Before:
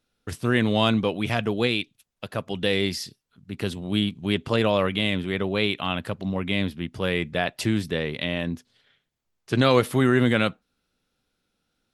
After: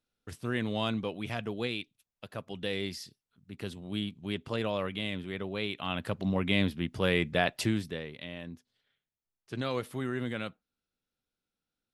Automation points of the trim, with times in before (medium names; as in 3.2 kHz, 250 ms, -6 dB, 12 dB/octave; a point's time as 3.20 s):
5.69 s -10.5 dB
6.19 s -2 dB
7.55 s -2 dB
8.12 s -14.5 dB